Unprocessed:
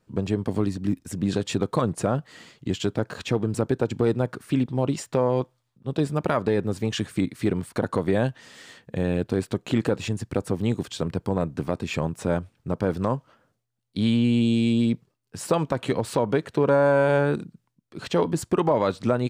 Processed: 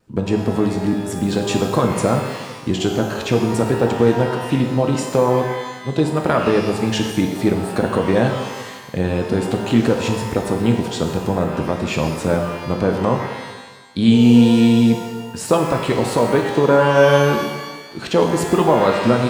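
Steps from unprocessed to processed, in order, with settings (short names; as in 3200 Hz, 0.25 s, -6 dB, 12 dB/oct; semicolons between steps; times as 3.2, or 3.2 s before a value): vibrato 0.37 Hz 6.3 cents; shimmer reverb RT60 1.2 s, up +12 st, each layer -8 dB, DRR 3 dB; gain +5.5 dB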